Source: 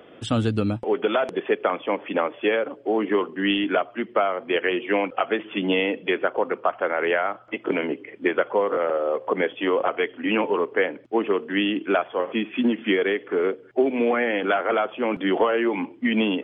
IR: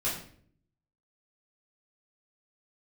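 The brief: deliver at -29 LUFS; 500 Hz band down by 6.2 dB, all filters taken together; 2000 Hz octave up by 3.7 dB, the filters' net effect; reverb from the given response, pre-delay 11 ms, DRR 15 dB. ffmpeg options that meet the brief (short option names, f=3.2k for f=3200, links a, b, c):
-filter_complex "[0:a]equalizer=f=500:t=o:g=-8,equalizer=f=2k:t=o:g=5,asplit=2[a][b];[1:a]atrim=start_sample=2205,adelay=11[c];[b][c]afir=irnorm=-1:irlink=0,volume=-22dB[d];[a][d]amix=inputs=2:normalize=0,volume=-4dB"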